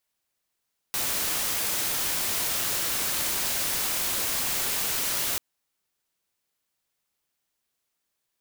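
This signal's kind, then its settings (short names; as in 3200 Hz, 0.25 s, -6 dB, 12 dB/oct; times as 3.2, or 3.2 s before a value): noise white, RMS -27.5 dBFS 4.44 s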